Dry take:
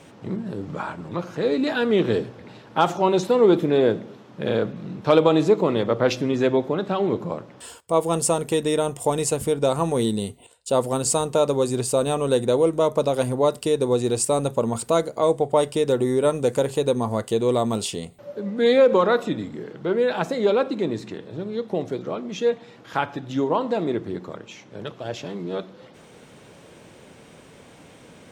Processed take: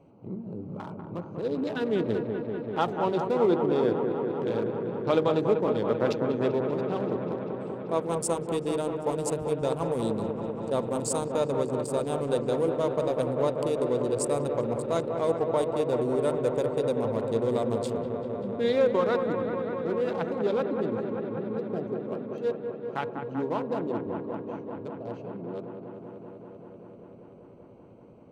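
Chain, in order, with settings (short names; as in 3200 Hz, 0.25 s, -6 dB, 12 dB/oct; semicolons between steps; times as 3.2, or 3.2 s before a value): Wiener smoothing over 25 samples; on a send: dark delay 0.194 s, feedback 85%, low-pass 2000 Hz, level -6.5 dB; on the sum: gain -7.5 dB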